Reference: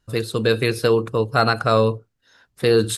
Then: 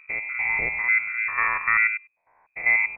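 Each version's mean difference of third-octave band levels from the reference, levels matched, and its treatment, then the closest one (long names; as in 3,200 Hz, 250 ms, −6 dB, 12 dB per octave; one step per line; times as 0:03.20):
17.5 dB: spectrum averaged block by block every 100 ms
voice inversion scrambler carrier 2,500 Hz
level −3 dB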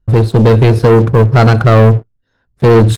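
6.0 dB: spectral tilt −4 dB per octave
leveller curve on the samples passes 3
level −1 dB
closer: second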